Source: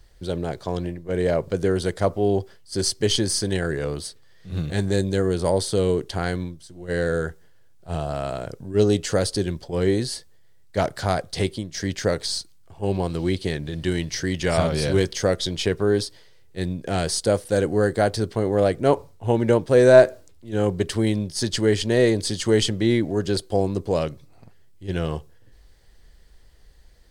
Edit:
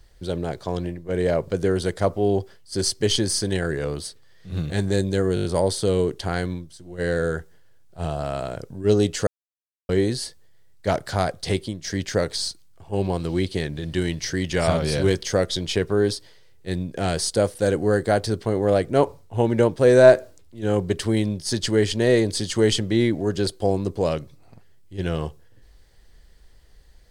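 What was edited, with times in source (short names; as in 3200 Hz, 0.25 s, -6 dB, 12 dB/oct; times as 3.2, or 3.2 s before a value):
5.35 stutter 0.02 s, 6 plays
9.17–9.79 mute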